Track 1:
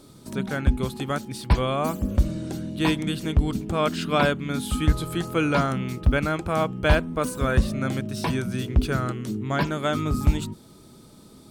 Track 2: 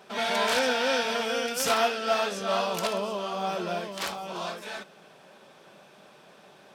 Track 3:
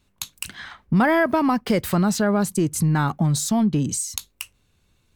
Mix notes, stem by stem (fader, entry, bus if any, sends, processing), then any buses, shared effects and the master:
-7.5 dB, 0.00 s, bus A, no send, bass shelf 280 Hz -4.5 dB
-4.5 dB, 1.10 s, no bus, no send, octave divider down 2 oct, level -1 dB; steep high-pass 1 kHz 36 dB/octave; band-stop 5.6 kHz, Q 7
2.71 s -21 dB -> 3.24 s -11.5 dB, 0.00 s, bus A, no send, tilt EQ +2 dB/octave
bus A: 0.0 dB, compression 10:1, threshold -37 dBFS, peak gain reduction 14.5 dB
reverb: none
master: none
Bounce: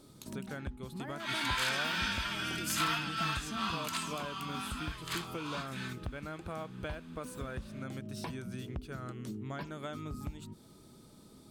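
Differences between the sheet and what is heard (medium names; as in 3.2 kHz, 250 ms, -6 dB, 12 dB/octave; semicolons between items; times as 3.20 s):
stem 1: missing bass shelf 280 Hz -4.5 dB; stem 3: missing tilt EQ +2 dB/octave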